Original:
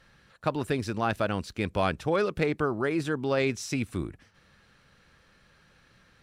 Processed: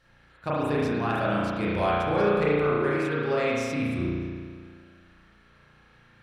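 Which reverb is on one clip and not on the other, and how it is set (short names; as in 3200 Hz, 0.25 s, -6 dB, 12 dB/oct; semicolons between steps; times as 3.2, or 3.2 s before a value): spring tank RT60 1.8 s, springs 34 ms, chirp 80 ms, DRR -8 dB; gain -5.5 dB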